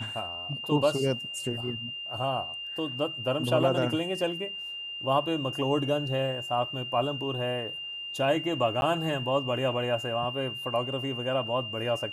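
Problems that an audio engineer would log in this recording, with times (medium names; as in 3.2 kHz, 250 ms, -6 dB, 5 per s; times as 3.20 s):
whine 2.8 kHz -35 dBFS
8.81–8.82 s: dropout 11 ms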